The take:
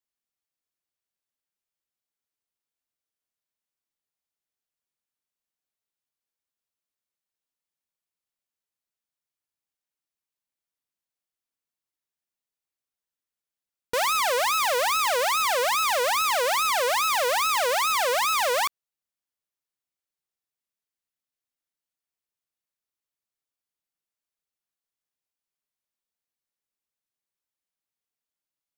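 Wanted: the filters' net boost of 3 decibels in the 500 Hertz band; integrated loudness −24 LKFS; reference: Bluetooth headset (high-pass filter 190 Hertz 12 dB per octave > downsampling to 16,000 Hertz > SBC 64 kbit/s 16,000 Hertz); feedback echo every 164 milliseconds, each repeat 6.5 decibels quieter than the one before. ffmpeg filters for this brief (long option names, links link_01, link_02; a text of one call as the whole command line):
ffmpeg -i in.wav -af "highpass=190,equalizer=frequency=500:width_type=o:gain=3.5,aecho=1:1:164|328|492|656|820|984:0.473|0.222|0.105|0.0491|0.0231|0.0109,aresample=16000,aresample=44100,volume=-3dB" -ar 16000 -c:a sbc -b:a 64k out.sbc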